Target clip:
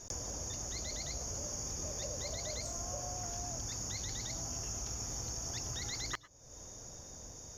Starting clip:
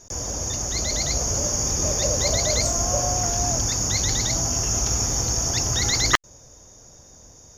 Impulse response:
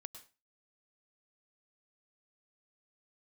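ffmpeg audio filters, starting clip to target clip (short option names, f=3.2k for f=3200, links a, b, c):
-filter_complex "[0:a]acompressor=threshold=-38dB:ratio=5,asplit=2[a][b];[1:a]atrim=start_sample=2205,afade=t=out:st=0.17:d=0.01,atrim=end_sample=7938[c];[b][c]afir=irnorm=-1:irlink=0,volume=0.5dB[d];[a][d]amix=inputs=2:normalize=0,volume=-5.5dB"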